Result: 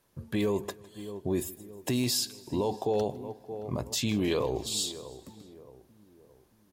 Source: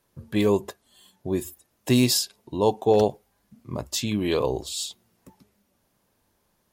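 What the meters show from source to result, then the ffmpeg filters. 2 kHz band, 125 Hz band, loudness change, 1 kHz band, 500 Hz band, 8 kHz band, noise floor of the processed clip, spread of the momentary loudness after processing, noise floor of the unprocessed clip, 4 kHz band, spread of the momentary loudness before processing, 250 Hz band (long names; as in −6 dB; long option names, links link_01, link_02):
−5.5 dB, −5.5 dB, −6.5 dB, −7.5 dB, −7.0 dB, −3.5 dB, −64 dBFS, 15 LU, −71 dBFS, −4.0 dB, 16 LU, −6.0 dB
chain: -filter_complex "[0:a]asplit=2[link_01][link_02];[link_02]adelay=621,lowpass=frequency=1000:poles=1,volume=-19dB,asplit=2[link_03][link_04];[link_04]adelay=621,lowpass=frequency=1000:poles=1,volume=0.46,asplit=2[link_05][link_06];[link_06]adelay=621,lowpass=frequency=1000:poles=1,volume=0.46,asplit=2[link_07][link_08];[link_08]adelay=621,lowpass=frequency=1000:poles=1,volume=0.46[link_09];[link_03][link_05][link_07][link_09]amix=inputs=4:normalize=0[link_10];[link_01][link_10]amix=inputs=2:normalize=0,alimiter=limit=-19.5dB:level=0:latency=1:release=29,asplit=2[link_11][link_12];[link_12]aecho=0:1:156|312|468|624:0.0891|0.0481|0.026|0.014[link_13];[link_11][link_13]amix=inputs=2:normalize=0"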